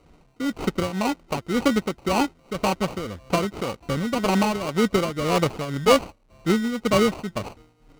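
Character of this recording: a quantiser's noise floor 10-bit, dither none; tremolo triangle 1.9 Hz, depth 75%; aliases and images of a low sample rate 1700 Hz, jitter 0%; IMA ADPCM

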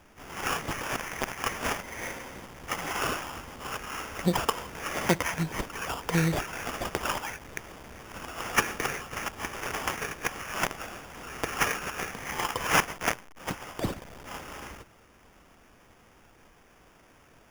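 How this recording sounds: aliases and images of a low sample rate 4100 Hz, jitter 0%

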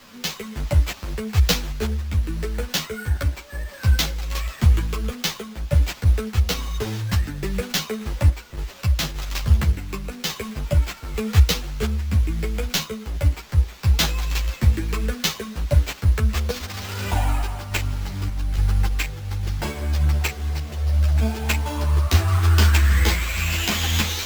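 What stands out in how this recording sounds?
a quantiser's noise floor 8-bit, dither triangular; random-step tremolo; aliases and images of a low sample rate 10000 Hz, jitter 0%; a shimmering, thickened sound

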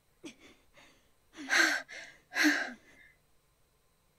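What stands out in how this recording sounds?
noise floor -72 dBFS; spectral tilt 0.0 dB/oct

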